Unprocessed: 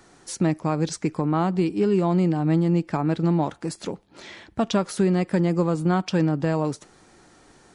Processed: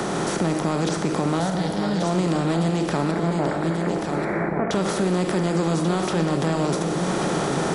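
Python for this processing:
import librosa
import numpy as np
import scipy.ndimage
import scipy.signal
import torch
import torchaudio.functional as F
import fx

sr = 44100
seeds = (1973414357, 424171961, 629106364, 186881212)

y = fx.bin_compress(x, sr, power=0.4)
y = fx.recorder_agc(y, sr, target_db=-12.0, rise_db_per_s=22.0, max_gain_db=30)
y = fx.fixed_phaser(y, sr, hz=1700.0, stages=8, at=(1.39, 2.03))
y = fx.transient(y, sr, attack_db=-3, sustain_db=5)
y = fx.cheby_ripple(y, sr, hz=2300.0, ripple_db=3, at=(3.11, 4.71))
y = y + 10.0 ** (-8.5 / 20.0) * np.pad(y, (int(1135 * sr / 1000.0), 0))[:len(y)]
y = fx.rev_gated(y, sr, seeds[0], gate_ms=400, shape='falling', drr_db=6.5)
y = fx.band_squash(y, sr, depth_pct=70)
y = y * librosa.db_to_amplitude(-5.0)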